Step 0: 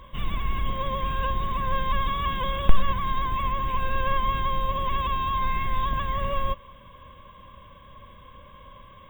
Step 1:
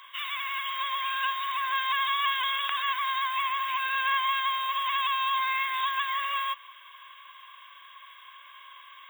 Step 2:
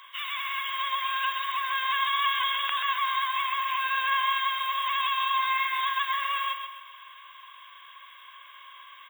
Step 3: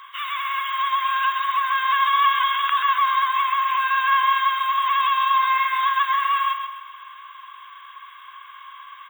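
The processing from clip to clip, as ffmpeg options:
ffmpeg -i in.wav -af "highpass=frequency=1300:width=0.5412,highpass=frequency=1300:width=1.3066,volume=7dB" out.wav
ffmpeg -i in.wav -af "aecho=1:1:131|262|393|524|655:0.447|0.183|0.0751|0.0308|0.0126" out.wav
ffmpeg -i in.wav -af "highpass=frequency=1200:width_type=q:width=3.7" out.wav

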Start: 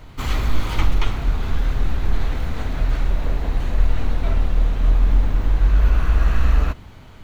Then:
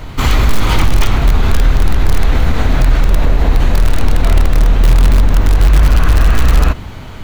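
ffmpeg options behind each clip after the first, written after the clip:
ffmpeg -i in.wav -filter_complex "[0:a]asplit=2[link_01][link_02];[link_02]aeval=exprs='(mod(3.35*val(0)+1,2)-1)/3.35':channel_layout=same,volume=-11.5dB[link_03];[link_01][link_03]amix=inputs=2:normalize=0,alimiter=level_in=12.5dB:limit=-1dB:release=50:level=0:latency=1,volume=-1dB" out.wav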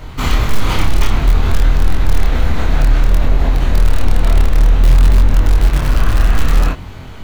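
ffmpeg -i in.wav -af "flanger=delay=22.5:depth=7.3:speed=0.58" out.wav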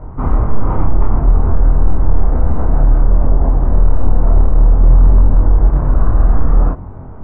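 ffmpeg -i in.wav -af "lowpass=frequency=1100:width=0.5412,lowpass=frequency=1100:width=1.3066,volume=1dB" out.wav

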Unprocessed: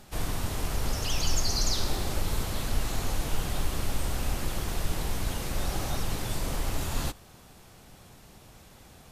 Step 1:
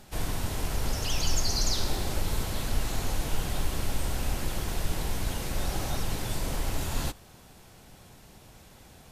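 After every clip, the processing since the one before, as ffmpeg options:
ffmpeg -i in.wav -af "bandreject=frequency=1200:width=17" out.wav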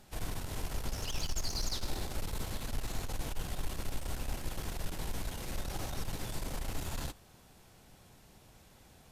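ffmpeg -i in.wav -af "aeval=exprs='(tanh(14.1*val(0)+0.45)-tanh(0.45))/14.1':channel_layout=same,volume=-5dB" out.wav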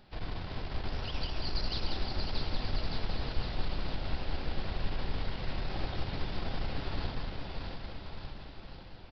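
ffmpeg -i in.wav -filter_complex "[0:a]asplit=2[link_01][link_02];[link_02]aecho=0:1:630|1197|1707|2167|2580:0.631|0.398|0.251|0.158|0.1[link_03];[link_01][link_03]amix=inputs=2:normalize=0,aresample=11025,aresample=44100,asplit=2[link_04][link_05];[link_05]aecho=0:1:188:0.596[link_06];[link_04][link_06]amix=inputs=2:normalize=0" out.wav

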